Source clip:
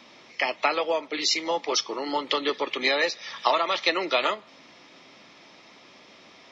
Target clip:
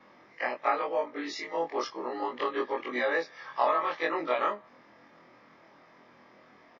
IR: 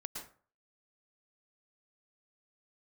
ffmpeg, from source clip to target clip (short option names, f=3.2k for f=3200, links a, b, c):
-filter_complex "[0:a]afftfilt=real='re':imag='-im':win_size=2048:overlap=0.75,highshelf=f=2.3k:t=q:w=1.5:g=-10.5,acrossover=split=110|670|1300[a][b][c][d];[a]aeval=exprs='(mod(3550*val(0)+1,2)-1)/3550':c=same[e];[e][b][c][d]amix=inputs=4:normalize=0,aresample=16000,aresample=44100,asetrate=42336,aresample=44100"